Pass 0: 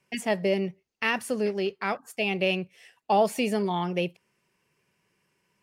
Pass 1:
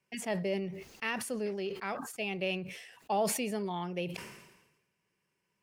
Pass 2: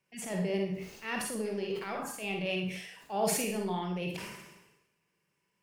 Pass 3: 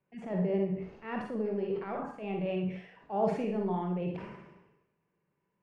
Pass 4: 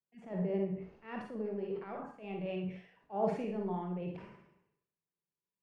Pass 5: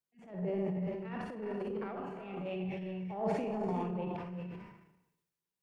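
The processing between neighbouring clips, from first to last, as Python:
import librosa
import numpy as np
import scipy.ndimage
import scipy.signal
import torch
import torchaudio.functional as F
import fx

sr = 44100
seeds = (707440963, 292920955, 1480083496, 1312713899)

y1 = fx.sustainer(x, sr, db_per_s=55.0)
y1 = y1 * 10.0 ** (-8.5 / 20.0)
y2 = fx.transient(y1, sr, attack_db=-11, sustain_db=2)
y2 = fx.rev_schroeder(y2, sr, rt60_s=0.45, comb_ms=38, drr_db=2.0)
y3 = scipy.signal.sosfilt(scipy.signal.bessel(2, 1000.0, 'lowpass', norm='mag', fs=sr, output='sos'), y2)
y3 = y3 * 10.0 ** (2.5 / 20.0)
y4 = fx.band_widen(y3, sr, depth_pct=40)
y4 = y4 * 10.0 ** (-5.0 / 20.0)
y5 = fx.rev_gated(y4, sr, seeds[0], gate_ms=440, shape='rising', drr_db=5.0)
y5 = fx.transient(y5, sr, attack_db=-10, sustain_db=7)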